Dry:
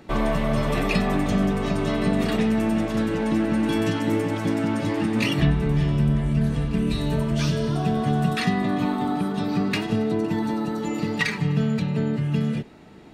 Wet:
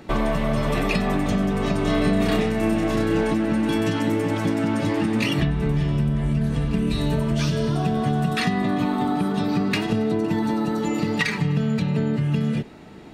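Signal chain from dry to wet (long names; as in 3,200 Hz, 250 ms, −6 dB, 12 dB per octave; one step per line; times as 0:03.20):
downward compressor, threshold −22 dBFS, peak gain reduction 8 dB
0:01.82–0:03.34: double-tracking delay 30 ms −3 dB
level +4 dB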